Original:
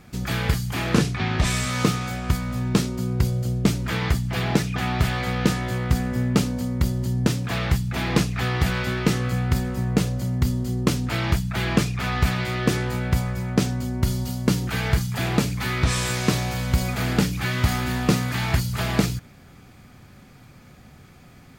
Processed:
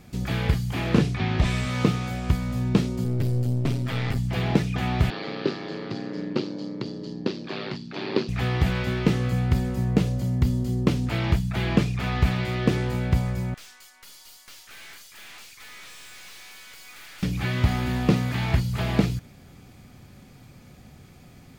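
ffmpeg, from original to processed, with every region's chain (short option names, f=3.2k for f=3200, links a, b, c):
-filter_complex "[0:a]asettb=1/sr,asplit=3[a][b][c];[a]atrim=end=3.044[d];[b]atrim=start=3.04:end=4.18,asetpts=PTS-STARTPTS,afade=t=in:d=0.004:c=qsin,afade=t=out:st=1.136:d=0.004:c=qsin,bandreject=f=6.5k:w=9.3,aecho=1:1:7.5:0.89,atrim=end_sample=50274,aeval=exprs='(tanh(10*val(0)+0.6)-tanh(0.6))/10':c=same[e];[c]atrim=start=4.176[f];[d][e]acrossfade=d=0.004:c1=hsin:c2=qsin[g];[g][f]acrossfade=d=0.004:c1=qsin:c2=hsin,asettb=1/sr,asplit=3[h][i][j];[h]atrim=end=5.104[k];[i]atrim=start=5.1:end=8.29,asetpts=PTS-STARTPTS,afade=t=in:d=0.004:c=qsin,afade=t=out:st=3.186:d=0.004:c=qsin,aeval=exprs='val(0)*sin(2*PI*50*n/s)':c=same,highpass=f=170:w=0.5412,highpass=f=170:w=1.3066,equalizer=f=180:t=q:w=4:g=-7,equalizer=f=260:t=q:w=4:g=-4,equalizer=f=370:t=q:w=4:g=9,equalizer=f=720:t=q:w=4:g=-4,equalizer=f=2.1k:t=q:w=4:g=-3,equalizer=f=4.5k:t=q:w=4:g=9,lowpass=f=5.2k:w=0.5412,lowpass=f=5.2k:w=1.3066[l];[j]atrim=start=8.286[m];[k][l]acrossfade=d=0.004:c1=hsin:c2=qsin[n];[n][m]acrossfade=d=0.004:c1=qsin:c2=hsin,asettb=1/sr,asplit=3[o][p][q];[o]atrim=end=13.544[r];[p]atrim=start=13.54:end=17.23,asetpts=PTS-STARTPTS,afade=t=in:d=0.004:c=qsin,afade=t=out:st=3.686:d=0.004:c=qsin,highpass=f=1.2k:w=0.5412,highpass=f=1.2k:w=1.3066,aeval=exprs='(tanh(100*val(0)+0.45)-tanh(0.45))/100':c=same[s];[q]atrim=start=17.226[t];[r][s]acrossfade=d=0.004:c1=hsin:c2=qsin[u];[u][t]acrossfade=d=0.004:c1=qsin:c2=hsin,acrossover=split=3700[v][w];[w]acompressor=threshold=-46dB:ratio=4:attack=1:release=60[x];[v][x]amix=inputs=2:normalize=0,equalizer=f=1.4k:w=1.1:g=-5.5"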